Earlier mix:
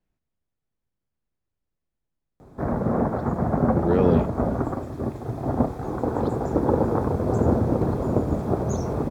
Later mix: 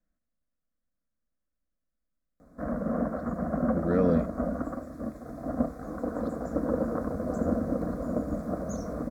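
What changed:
background −4.0 dB
master: add phaser with its sweep stopped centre 580 Hz, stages 8

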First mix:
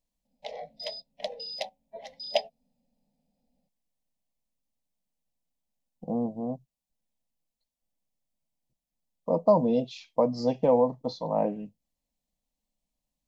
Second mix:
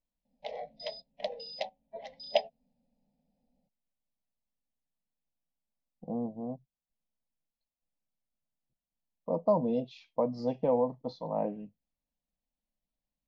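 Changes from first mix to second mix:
speech −5.0 dB
master: add high-frequency loss of the air 150 metres

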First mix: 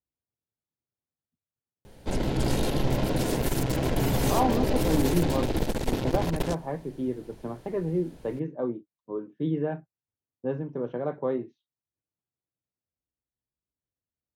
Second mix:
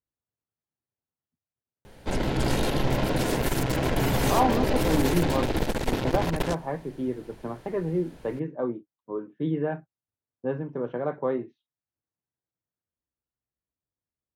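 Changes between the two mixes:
speech: add high-frequency loss of the air 96 metres
master: add parametric band 1,600 Hz +5.5 dB 2.2 octaves

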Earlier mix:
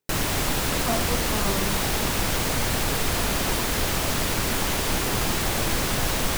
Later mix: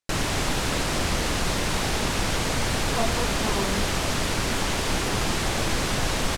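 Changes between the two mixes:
speech: entry +2.10 s
background: add low-pass filter 8,500 Hz 12 dB per octave

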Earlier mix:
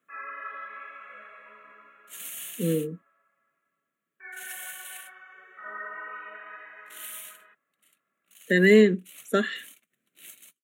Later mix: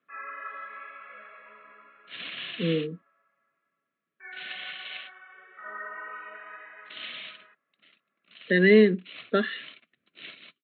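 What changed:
second sound +10.5 dB
master: add Chebyshev low-pass filter 4,200 Hz, order 8

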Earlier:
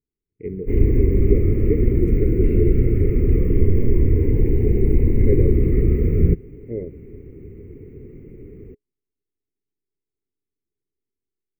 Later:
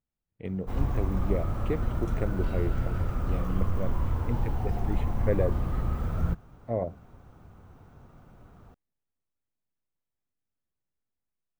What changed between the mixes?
background −11.5 dB
master: remove drawn EQ curve 210 Hz 0 dB, 420 Hz +13 dB, 680 Hz −28 dB, 1,500 Hz −25 dB, 2,100 Hz +3 dB, 3,400 Hz −26 dB, 4,900 Hz −25 dB, 8,800 Hz −18 dB, 14,000 Hz −8 dB

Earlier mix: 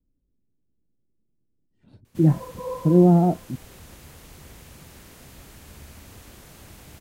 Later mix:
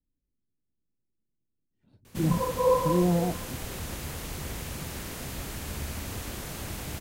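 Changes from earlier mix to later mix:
speech −9.5 dB
background +9.5 dB

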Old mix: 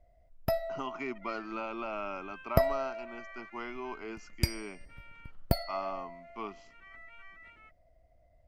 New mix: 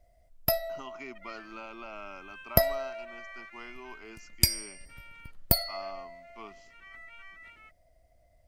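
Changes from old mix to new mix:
speech −7.5 dB
first sound: add high-shelf EQ 6,000 Hz +6.5 dB
master: add high-shelf EQ 3,300 Hz +12 dB

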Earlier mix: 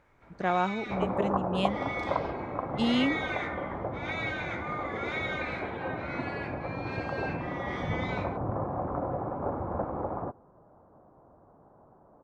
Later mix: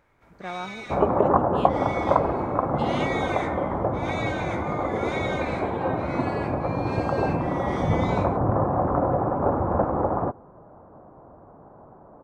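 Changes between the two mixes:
speech −7.0 dB
first sound: remove low-pass filter 3,800 Hz 12 dB per octave
second sound +9.5 dB

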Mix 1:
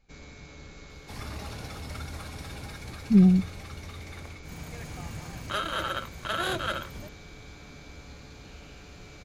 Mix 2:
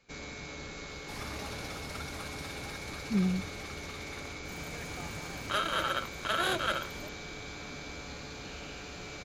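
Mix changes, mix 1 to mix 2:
speech −7.0 dB
first sound +7.0 dB
master: add low-shelf EQ 160 Hz −10 dB

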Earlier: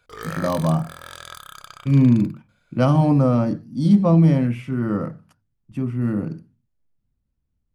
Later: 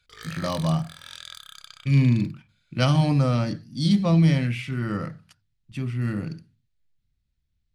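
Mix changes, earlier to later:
background −9.0 dB
master: add octave-band graphic EQ 250/500/1,000/2,000/4,000/8,000 Hz −7/−5/−6/+5/+11/+4 dB

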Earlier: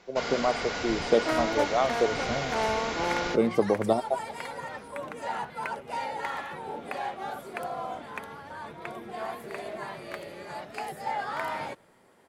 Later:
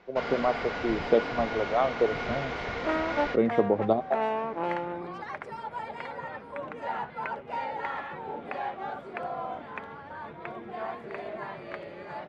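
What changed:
second sound: entry +1.60 s
master: add low-pass filter 2,700 Hz 12 dB per octave

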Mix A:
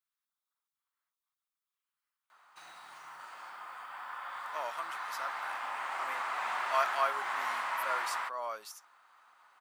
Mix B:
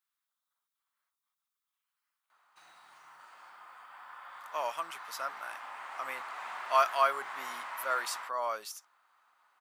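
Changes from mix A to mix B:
speech +4.5 dB
background −6.5 dB

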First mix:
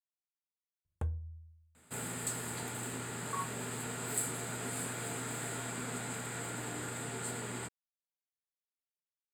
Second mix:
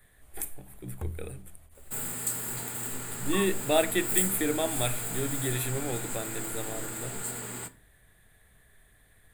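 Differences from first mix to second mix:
speech: unmuted
master: remove high-frequency loss of the air 55 metres

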